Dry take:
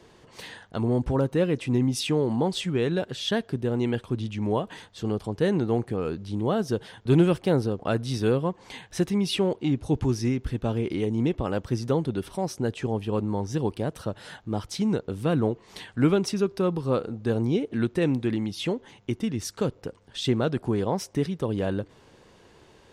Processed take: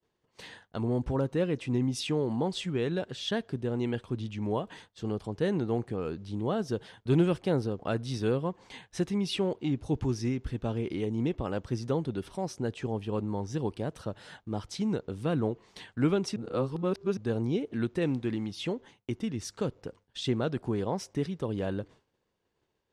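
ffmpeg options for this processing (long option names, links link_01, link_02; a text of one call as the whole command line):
ffmpeg -i in.wav -filter_complex "[0:a]asettb=1/sr,asplit=3[link_01][link_02][link_03];[link_01]atrim=end=18.044[link_04];[link_02]atrim=start=18.04:end=18.52,asetpts=PTS-STARTPTS,afade=type=in:duration=0.004:curve=qsin,afade=type=out:start_time=0.476:duration=0.004:curve=qsin,aeval=exprs='sgn(val(0))*max(abs(val(0))-0.00211,0)':channel_layout=same[link_05];[link_03]atrim=start=18.516[link_06];[link_04][link_05]acrossfade=duration=0.004:curve1=hsin:curve2=qsin[link_07];[link_07][link_06]acrossfade=duration=0.004:curve1=qsin:curve2=hsin,asplit=3[link_08][link_09][link_10];[link_08]atrim=end=16.362[link_11];[link_09]atrim=start=16.358:end=17.172,asetpts=PTS-STARTPTS,areverse[link_12];[link_10]atrim=start=17.168[link_13];[link_11][link_12]acrossfade=duration=0.004:curve1=hsin:curve2=hsin[link_14];[link_14][link_13]acrossfade=duration=0.004:curve1=hsin:curve2=hsin,agate=range=-33dB:threshold=-41dB:ratio=3:detection=peak,lowpass=9500,volume=-5dB" out.wav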